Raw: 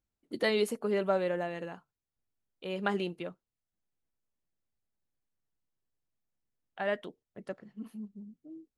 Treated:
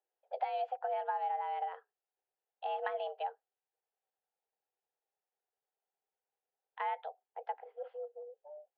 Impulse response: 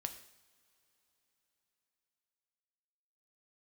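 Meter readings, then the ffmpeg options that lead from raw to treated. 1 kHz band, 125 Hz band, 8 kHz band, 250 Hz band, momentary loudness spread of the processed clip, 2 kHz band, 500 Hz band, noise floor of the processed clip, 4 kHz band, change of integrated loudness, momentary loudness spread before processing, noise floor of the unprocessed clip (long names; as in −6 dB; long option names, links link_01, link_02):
+5.5 dB, below −40 dB, can't be measured, below −40 dB, 13 LU, −9.5 dB, −8.0 dB, below −85 dBFS, −13.0 dB, −5.5 dB, 19 LU, below −85 dBFS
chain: -af "highpass=170,equalizer=frequency=300:width_type=q:width=4:gain=-6,equalizer=frequency=500:width_type=q:width=4:gain=10,equalizer=frequency=850:width_type=q:width=4:gain=-8,equalizer=frequency=1900:width_type=q:width=4:gain=-8,lowpass=frequency=2500:width=0.5412,lowpass=frequency=2500:width=1.3066,acompressor=threshold=-34dB:ratio=6,afreqshift=280,volume=1dB"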